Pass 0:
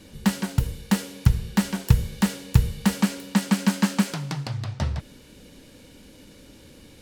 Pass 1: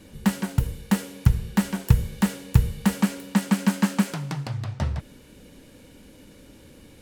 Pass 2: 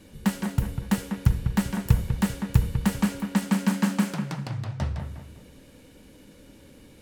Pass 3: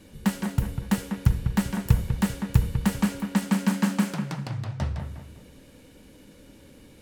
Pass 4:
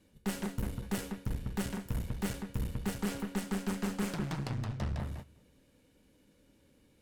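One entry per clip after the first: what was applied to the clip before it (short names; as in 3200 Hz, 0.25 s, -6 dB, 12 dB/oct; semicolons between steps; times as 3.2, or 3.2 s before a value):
bell 4600 Hz -5 dB 1.3 oct
dark delay 0.197 s, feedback 33%, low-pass 2500 Hz, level -7.5 dB; gain -2.5 dB
nothing audible
gate -38 dBFS, range -15 dB; reverse; compressor 6:1, threshold -27 dBFS, peak gain reduction 14.5 dB; reverse; one-sided clip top -41 dBFS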